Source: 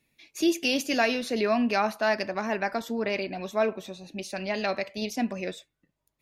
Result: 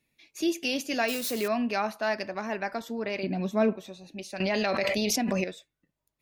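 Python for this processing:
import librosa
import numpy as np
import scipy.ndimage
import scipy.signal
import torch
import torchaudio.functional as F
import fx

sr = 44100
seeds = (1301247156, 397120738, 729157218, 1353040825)

y = fx.crossing_spikes(x, sr, level_db=-22.5, at=(1.08, 1.48))
y = fx.peak_eq(y, sr, hz=190.0, db=13.0, octaves=1.8, at=(3.23, 3.76))
y = fx.env_flatten(y, sr, amount_pct=100, at=(4.4, 5.44))
y = F.gain(torch.from_numpy(y), -3.5).numpy()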